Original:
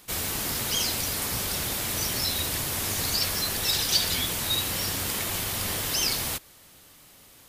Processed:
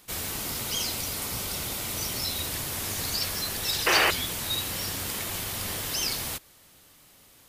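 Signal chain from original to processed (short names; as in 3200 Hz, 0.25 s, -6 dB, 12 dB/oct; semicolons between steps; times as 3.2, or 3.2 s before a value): 0.38–2.44 notch 1700 Hz, Q 10; 3.86–4.11 painted sound noise 300–3100 Hz -19 dBFS; gain -3 dB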